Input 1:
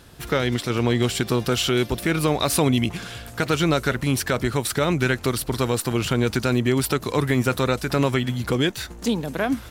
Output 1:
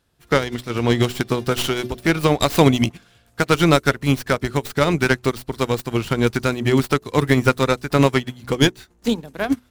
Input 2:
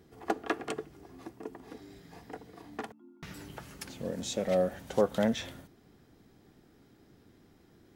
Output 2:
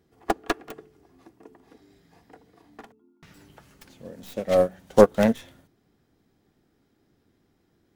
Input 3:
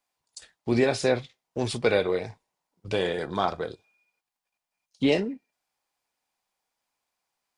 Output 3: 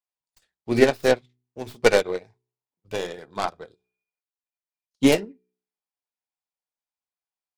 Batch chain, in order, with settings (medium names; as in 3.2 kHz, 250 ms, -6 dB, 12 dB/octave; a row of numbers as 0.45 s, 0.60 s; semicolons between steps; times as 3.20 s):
tracing distortion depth 0.18 ms; de-hum 61.9 Hz, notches 7; upward expansion 2.5:1, over -35 dBFS; peak normalisation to -1.5 dBFS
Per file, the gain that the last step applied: +8.0 dB, +13.5 dB, +8.0 dB